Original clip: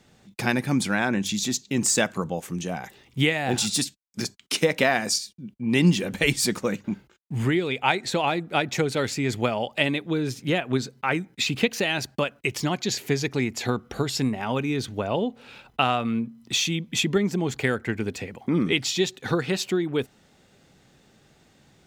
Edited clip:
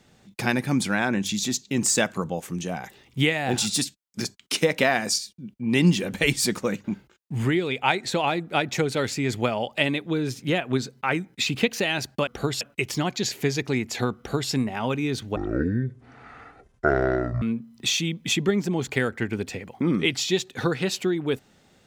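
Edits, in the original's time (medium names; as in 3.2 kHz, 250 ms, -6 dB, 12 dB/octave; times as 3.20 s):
13.83–14.17 s: copy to 12.27 s
15.02–16.09 s: speed 52%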